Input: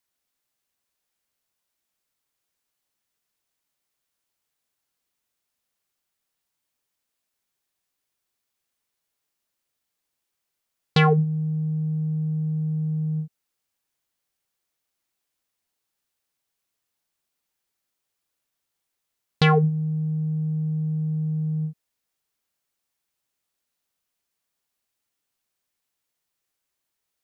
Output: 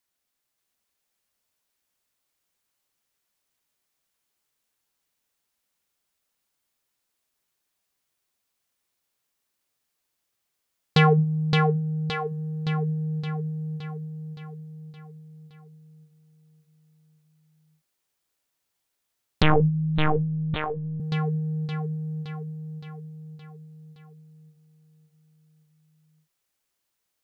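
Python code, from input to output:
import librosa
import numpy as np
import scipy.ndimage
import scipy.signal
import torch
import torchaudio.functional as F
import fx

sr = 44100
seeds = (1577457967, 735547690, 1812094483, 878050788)

y = fx.echo_feedback(x, sr, ms=568, feedback_pct=56, wet_db=-3.5)
y = fx.lpc_vocoder(y, sr, seeds[0], excitation='pitch_kept', order=16, at=(19.42, 21.0))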